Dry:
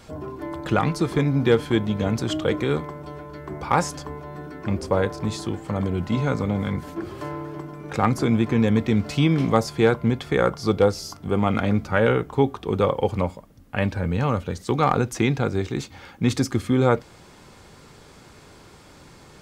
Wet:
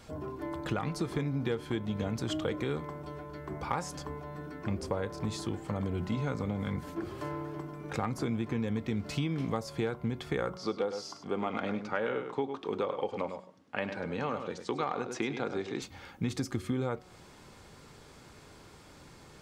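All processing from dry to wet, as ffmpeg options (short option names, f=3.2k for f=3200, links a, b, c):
-filter_complex "[0:a]asettb=1/sr,asplit=3[a][b][c];[a]atrim=end=10.574[d];[b]atrim=start=10.57:end=15.82,asetpts=PTS-STARTPTS,afade=t=in:d=0.004:c=qsin,afade=t=out:st=5.246:d=0.004:c=qsin,highpass=260,lowpass=5.8k,aecho=1:1:102:0.316,atrim=end_sample=231525[e];[c]atrim=start=15.816[f];[d][e]acrossfade=d=0.004:c1=hsin:c2=qsin[g];[g][f]acrossfade=d=0.004:c1=qsin:c2=hsin,bandreject=f=184.3:t=h:w=4,bandreject=f=368.6:t=h:w=4,bandreject=f=552.9:t=h:w=4,bandreject=f=737.2:t=h:w=4,bandreject=f=921.5:t=h:w=4,bandreject=f=1.1058k:t=h:w=4,bandreject=f=1.2901k:t=h:w=4,acompressor=threshold=-23dB:ratio=6,volume=-5.5dB"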